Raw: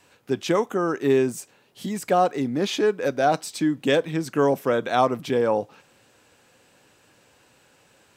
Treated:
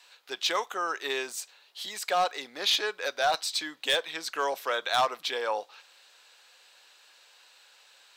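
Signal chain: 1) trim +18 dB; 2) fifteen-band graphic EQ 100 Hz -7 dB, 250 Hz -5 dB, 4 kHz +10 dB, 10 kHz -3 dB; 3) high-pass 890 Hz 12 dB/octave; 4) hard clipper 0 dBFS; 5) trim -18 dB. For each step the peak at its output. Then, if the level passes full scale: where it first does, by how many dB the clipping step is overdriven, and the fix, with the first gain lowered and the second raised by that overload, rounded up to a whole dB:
+12.0 dBFS, +12.0 dBFS, +9.0 dBFS, 0.0 dBFS, -18.0 dBFS; step 1, 9.0 dB; step 1 +9 dB, step 5 -9 dB

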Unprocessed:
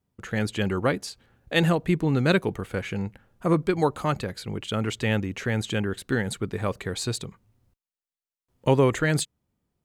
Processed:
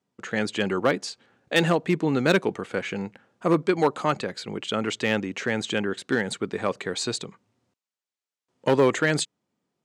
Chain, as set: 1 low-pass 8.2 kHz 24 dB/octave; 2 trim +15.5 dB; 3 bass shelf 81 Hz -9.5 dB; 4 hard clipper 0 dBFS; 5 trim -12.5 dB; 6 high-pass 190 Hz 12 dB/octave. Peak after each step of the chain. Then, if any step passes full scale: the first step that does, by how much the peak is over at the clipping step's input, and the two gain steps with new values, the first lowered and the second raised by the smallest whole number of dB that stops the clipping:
-7.5 dBFS, +8.0 dBFS, +9.0 dBFS, 0.0 dBFS, -12.5 dBFS, -6.0 dBFS; step 2, 9.0 dB; step 2 +6.5 dB, step 5 -3.5 dB

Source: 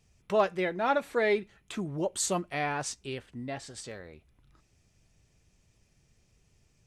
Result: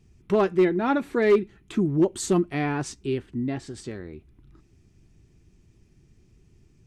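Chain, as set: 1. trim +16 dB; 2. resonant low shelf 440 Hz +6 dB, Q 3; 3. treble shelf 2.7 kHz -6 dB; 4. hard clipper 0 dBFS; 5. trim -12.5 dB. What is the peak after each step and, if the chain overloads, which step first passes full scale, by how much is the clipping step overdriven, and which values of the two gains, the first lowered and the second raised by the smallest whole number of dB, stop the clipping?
+3.0 dBFS, +5.5 dBFS, +5.0 dBFS, 0.0 dBFS, -12.5 dBFS; step 1, 5.0 dB; step 1 +11 dB, step 5 -7.5 dB

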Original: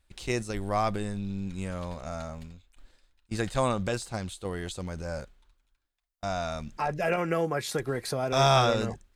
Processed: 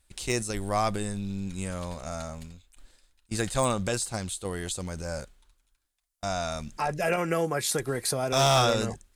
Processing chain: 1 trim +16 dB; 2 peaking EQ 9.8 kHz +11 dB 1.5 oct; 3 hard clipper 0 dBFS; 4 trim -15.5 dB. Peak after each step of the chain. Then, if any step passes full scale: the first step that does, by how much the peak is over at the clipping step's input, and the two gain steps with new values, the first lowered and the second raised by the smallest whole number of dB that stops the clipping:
+7.0 dBFS, +8.0 dBFS, 0.0 dBFS, -15.5 dBFS; step 1, 8.0 dB; step 1 +8 dB, step 4 -7.5 dB

